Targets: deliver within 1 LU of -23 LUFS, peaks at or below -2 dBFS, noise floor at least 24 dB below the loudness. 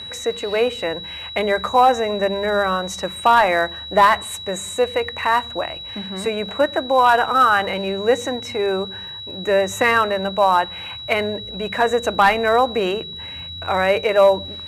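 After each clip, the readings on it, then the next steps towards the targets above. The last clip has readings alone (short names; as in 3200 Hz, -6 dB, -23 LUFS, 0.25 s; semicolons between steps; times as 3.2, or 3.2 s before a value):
ticks 53/s; steady tone 3900 Hz; tone level -31 dBFS; loudness -19.0 LUFS; peak -4.0 dBFS; loudness target -23.0 LUFS
-> de-click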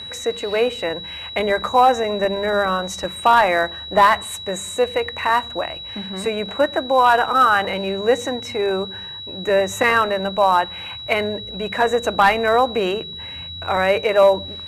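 ticks 0.27/s; steady tone 3900 Hz; tone level -31 dBFS
-> notch 3900 Hz, Q 30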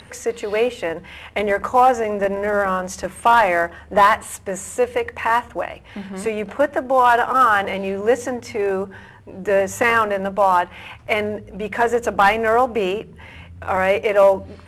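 steady tone none; loudness -19.0 LUFS; peak -4.5 dBFS; loudness target -23.0 LUFS
-> gain -4 dB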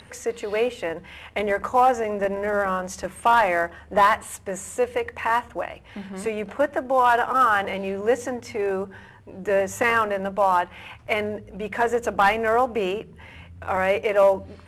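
loudness -23.0 LUFS; peak -8.5 dBFS; noise floor -47 dBFS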